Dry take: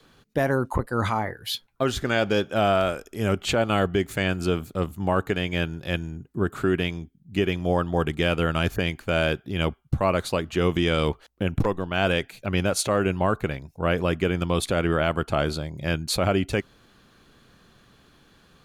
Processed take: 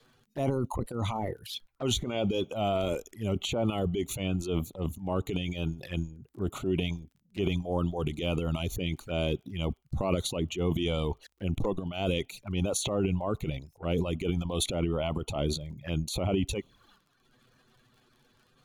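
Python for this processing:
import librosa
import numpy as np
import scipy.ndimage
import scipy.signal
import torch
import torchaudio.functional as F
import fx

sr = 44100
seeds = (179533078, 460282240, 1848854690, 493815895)

y = fx.transient(x, sr, attack_db=-7, sustain_db=10)
y = fx.dereverb_blind(y, sr, rt60_s=1.0)
y = fx.env_flanger(y, sr, rest_ms=9.3, full_db=-27.5)
y = fx.dmg_crackle(y, sr, seeds[0], per_s=26.0, level_db=-48.0)
y = y * 10.0 ** (-3.5 / 20.0)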